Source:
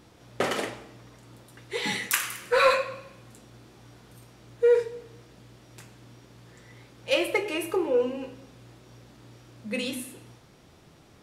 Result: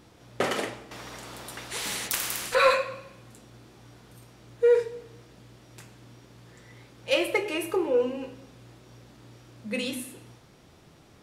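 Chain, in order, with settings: 0.91–2.55 s: spectrum-flattening compressor 4:1

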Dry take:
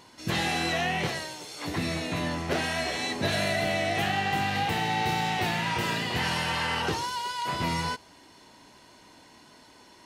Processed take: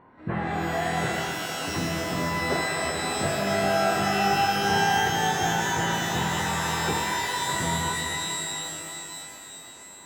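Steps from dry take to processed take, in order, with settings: low-pass 1.7 kHz 24 dB/octave; pitch-shifted reverb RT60 3.2 s, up +12 st, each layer -2 dB, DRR 2 dB

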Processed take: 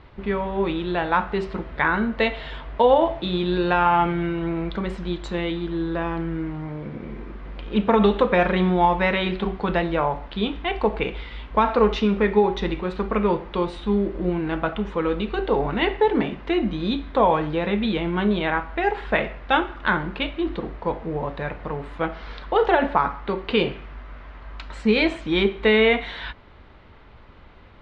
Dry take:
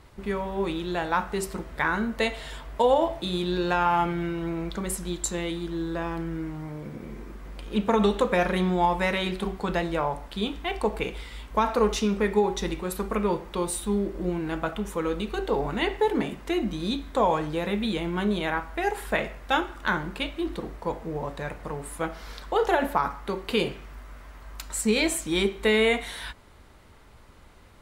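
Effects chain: low-pass 3.7 kHz 24 dB/octave; trim +4.5 dB

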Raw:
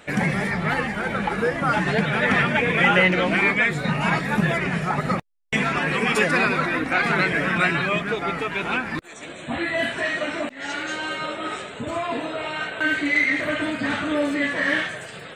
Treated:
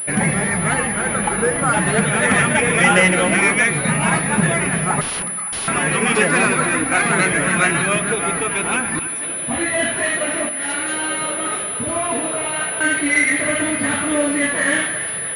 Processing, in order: two-band feedback delay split 860 Hz, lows 80 ms, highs 283 ms, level -11.5 dB; 5.01–5.68 s: integer overflow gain 25 dB; class-D stage that switches slowly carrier 10 kHz; trim +3.5 dB

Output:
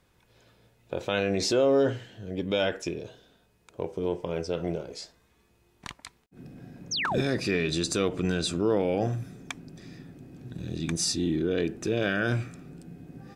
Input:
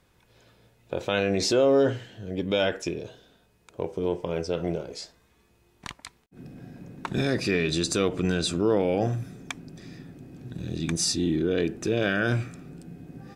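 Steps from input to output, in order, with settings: painted sound fall, 6.91–7.21 s, 310–6800 Hz -27 dBFS; trim -2 dB

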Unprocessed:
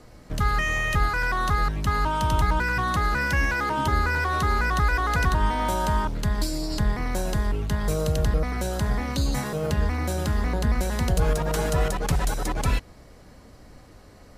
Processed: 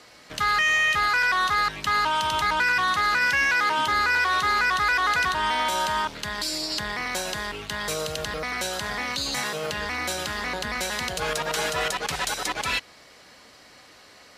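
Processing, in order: high-pass 570 Hz 6 dB/octave; peaking EQ 3.3 kHz +11 dB 2.5 oct; peak limiter -15 dBFS, peak gain reduction 7 dB

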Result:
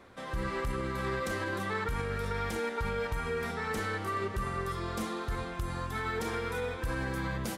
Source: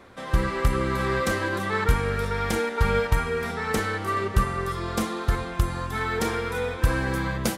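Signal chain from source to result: peak limiter -19 dBFS, peak gain reduction 11.5 dB; trim -5.5 dB

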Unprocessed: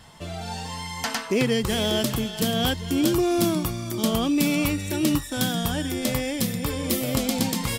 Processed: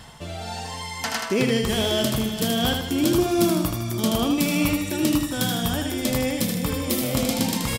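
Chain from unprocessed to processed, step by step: reverse; upward compressor, threshold -32 dBFS; reverse; feedback delay 78 ms, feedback 44%, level -5 dB

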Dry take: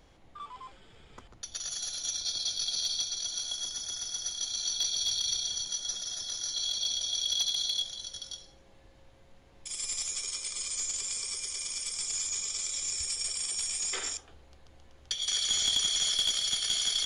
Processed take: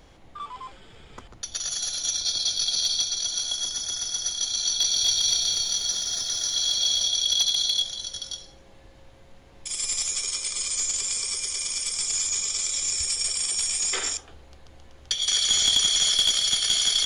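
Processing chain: 4.66–7.08 s: bit-crushed delay 241 ms, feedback 55%, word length 10-bit, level -4 dB; trim +7 dB

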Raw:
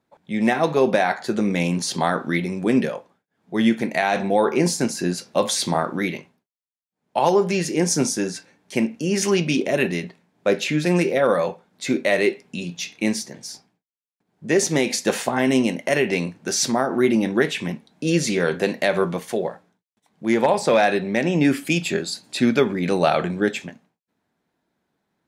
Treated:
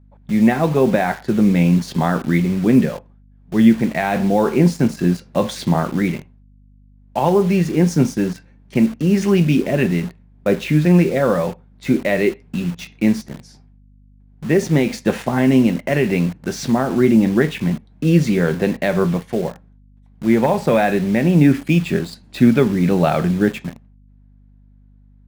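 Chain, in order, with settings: tone controls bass +12 dB, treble -12 dB; hum 50 Hz, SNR 27 dB; in parallel at -4 dB: bit crusher 5-bit; on the sum: trim -4 dB

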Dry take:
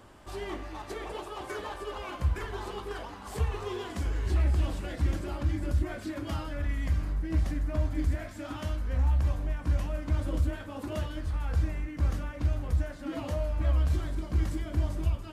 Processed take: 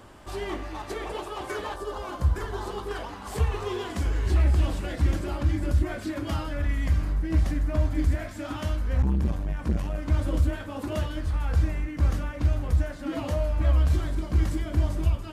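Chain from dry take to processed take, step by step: 1.74–2.88 s: peaking EQ 2.4 kHz -12.5 dB -> -5.5 dB 0.75 oct; 9.02–10.10 s: transformer saturation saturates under 170 Hz; trim +4.5 dB

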